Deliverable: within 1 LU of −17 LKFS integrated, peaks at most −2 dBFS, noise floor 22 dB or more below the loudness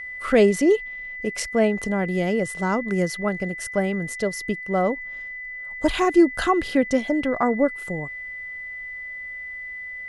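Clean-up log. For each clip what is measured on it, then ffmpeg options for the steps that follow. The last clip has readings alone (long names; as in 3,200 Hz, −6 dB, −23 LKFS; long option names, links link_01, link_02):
interfering tone 2,000 Hz; level of the tone −32 dBFS; integrated loudness −23.5 LKFS; sample peak −6.5 dBFS; target loudness −17.0 LKFS
→ -af "bandreject=frequency=2000:width=30"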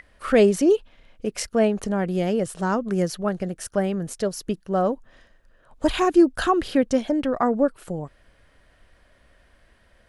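interfering tone none found; integrated loudness −23.0 LKFS; sample peak −6.5 dBFS; target loudness −17.0 LKFS
→ -af "volume=6dB,alimiter=limit=-2dB:level=0:latency=1"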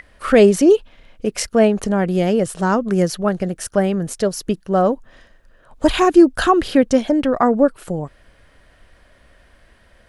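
integrated loudness −17.0 LKFS; sample peak −2.0 dBFS; background noise floor −53 dBFS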